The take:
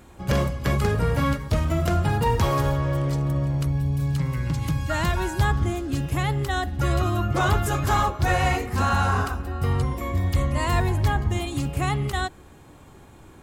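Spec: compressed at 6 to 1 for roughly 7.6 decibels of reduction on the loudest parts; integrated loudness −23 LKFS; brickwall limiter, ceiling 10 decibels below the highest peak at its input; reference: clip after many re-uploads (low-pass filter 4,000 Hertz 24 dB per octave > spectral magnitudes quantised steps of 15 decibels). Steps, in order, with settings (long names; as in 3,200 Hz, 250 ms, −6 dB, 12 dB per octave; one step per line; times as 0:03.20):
downward compressor 6 to 1, threshold −25 dBFS
brickwall limiter −25 dBFS
low-pass filter 4,000 Hz 24 dB per octave
spectral magnitudes quantised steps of 15 dB
level +11 dB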